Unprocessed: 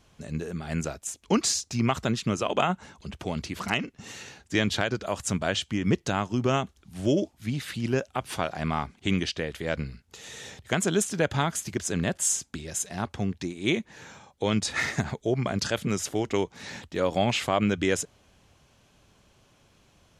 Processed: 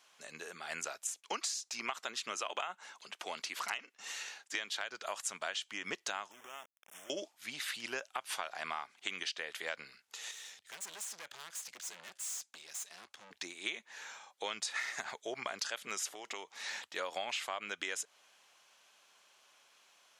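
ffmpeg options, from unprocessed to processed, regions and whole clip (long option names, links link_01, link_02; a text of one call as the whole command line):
ffmpeg -i in.wav -filter_complex "[0:a]asettb=1/sr,asplit=3[link_01][link_02][link_03];[link_01]atrim=end=1.054[link_04];[link_02]atrim=start=1.05:end=4.84,asetpts=PTS-STARTPTS,afade=type=in:duration=0.004:curve=qsin,afade=type=out:start_time=3.786:duration=0.004:curve=qsin,agate=range=-33dB:threshold=-54dB:ratio=3:release=100:detection=peak,highpass=180,acompressor=mode=upward:threshold=-47dB:ratio=2.5:attack=3.2:release=140:knee=2.83:detection=peak[link_05];[link_03]atrim=start=4.836[link_06];[link_04][link_05]acrossfade=duration=0.004:curve1=hsin:curve2=qsin[link_07];[link_07][link_06]acrossfade=duration=0.004:curve1=qsin:curve2=hsin,asettb=1/sr,asplit=3[link_08][link_09][link_10];[link_08]atrim=end=6.314[link_11];[link_09]atrim=start=6.31:end=7.1,asetpts=PTS-STARTPTS,afade=type=in:duration=0.004:curve=qsin,afade=type=out:start_time=0.786:duration=0.004:curve=qsin,acompressor=threshold=-39dB:ratio=6:attack=3.2:release=140:knee=1:detection=peak,aeval=exprs='val(0)*gte(abs(val(0)),0.00562)':channel_layout=same,asuperstop=centerf=4400:order=12:qfactor=2.5[link_12];[link_10]atrim=start=7.096[link_13];[link_11][link_12]acrossfade=duration=0.004:curve1=hsin:curve2=qsin[link_14];[link_14][link_13]acrossfade=duration=0.004:curve1=qsin:curve2=hsin,asettb=1/sr,asplit=3[link_15][link_16][link_17];[link_15]atrim=end=10.314[link_18];[link_16]atrim=start=10.31:end=13.31,asetpts=PTS-STARTPTS,afade=type=in:duration=0.004:curve=qsin,afade=type=out:start_time=2.996:duration=0.004:curve=qsin,lowpass=11000,equalizer=frequency=820:width_type=o:width=2.8:gain=-8.5,aeval=exprs='(tanh(89.1*val(0)+0.7)-tanh(0.7))/89.1':channel_layout=same[link_19];[link_17]atrim=start=13.306[link_20];[link_18][link_19]acrossfade=duration=0.004:curve1=hsin:curve2=qsin[link_21];[link_21][link_20]acrossfade=duration=0.004:curve1=qsin:curve2=hsin,asettb=1/sr,asplit=3[link_22][link_23][link_24];[link_22]atrim=end=16.104[link_25];[link_23]atrim=start=16.1:end=16.64,asetpts=PTS-STARTPTS,afade=type=in:duration=0.004:curve=qsin,afade=type=out:start_time=0.536:duration=0.004:curve=qsin,bandreject=frequency=1500:width=11,acompressor=threshold=-30dB:ratio=5:attack=3.2:release=140:knee=1:detection=peak,highpass=90[link_26];[link_24]atrim=start=16.636[link_27];[link_25][link_26]acrossfade=duration=0.004:curve1=hsin:curve2=qsin[link_28];[link_28][link_27]acrossfade=duration=0.004:curve1=qsin:curve2=hsin,highpass=940,acompressor=threshold=-34dB:ratio=12" out.wav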